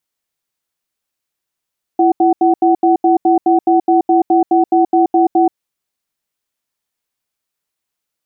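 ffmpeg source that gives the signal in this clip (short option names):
-f lavfi -i "aevalsrc='0.299*(sin(2*PI*336*t)+sin(2*PI*749*t))*clip(min(mod(t,0.21),0.13-mod(t,0.21))/0.005,0,1)':d=3.57:s=44100"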